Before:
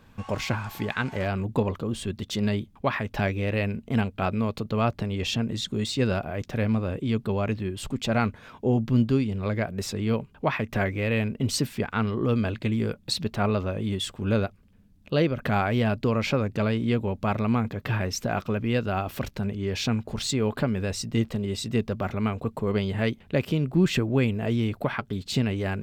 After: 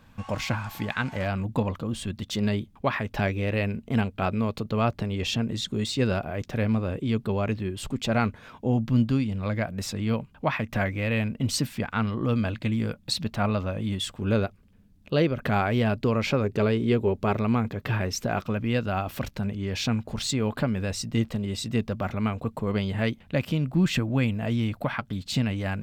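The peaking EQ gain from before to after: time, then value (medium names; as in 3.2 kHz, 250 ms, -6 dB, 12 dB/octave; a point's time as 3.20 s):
peaking EQ 400 Hz 0.31 oct
-9 dB
from 2.36 s -0.5 dB
from 8.57 s -9.5 dB
from 14.18 s +1 dB
from 16.44 s +10 dB
from 17.37 s +1 dB
from 18.43 s -5.5 dB
from 23.24 s -12.5 dB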